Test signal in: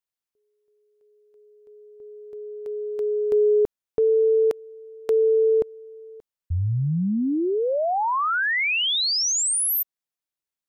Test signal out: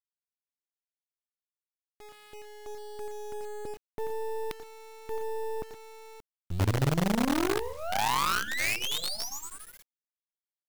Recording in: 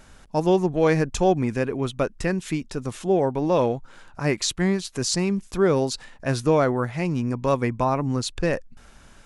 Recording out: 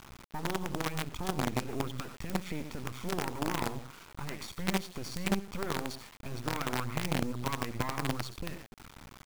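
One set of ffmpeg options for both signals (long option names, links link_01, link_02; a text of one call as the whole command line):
ffmpeg -i in.wav -af "highpass=55,aecho=1:1:0.9:0.91,acompressor=threshold=-25dB:ratio=16:attack=0.11:release=112:knee=6:detection=rms,aecho=1:1:87|111|120:0.316|0.106|0.168,adynamicsmooth=sensitivity=3:basefreq=3200,acrusher=bits=5:dc=4:mix=0:aa=0.000001" out.wav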